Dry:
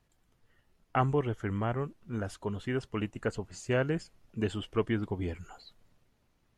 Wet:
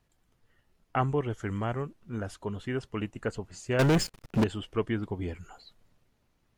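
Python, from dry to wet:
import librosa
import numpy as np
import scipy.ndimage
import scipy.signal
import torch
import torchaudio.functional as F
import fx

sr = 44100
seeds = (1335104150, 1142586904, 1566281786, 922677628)

y = fx.peak_eq(x, sr, hz=6900.0, db=8.0, octaves=1.6, at=(1.3, 1.82))
y = fx.leveller(y, sr, passes=5, at=(3.79, 4.44))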